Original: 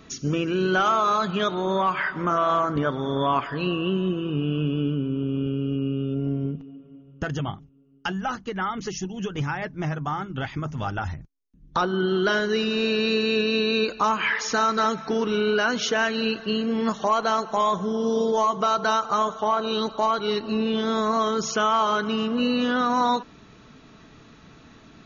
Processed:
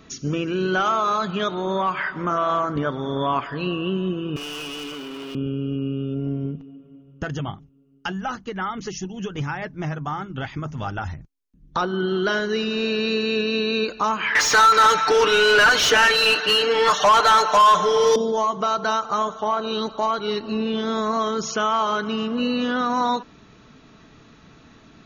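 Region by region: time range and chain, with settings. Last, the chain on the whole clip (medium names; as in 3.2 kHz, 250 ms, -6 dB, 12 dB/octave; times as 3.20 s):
4.36–5.35 s: high-pass 1 kHz + treble shelf 3.8 kHz -7.5 dB + waveshaping leveller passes 5
14.35–18.16 s: tilt EQ +3.5 dB/octave + comb 6.7 ms, depth 77% + overdrive pedal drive 22 dB, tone 2 kHz, clips at -6 dBFS
whole clip: none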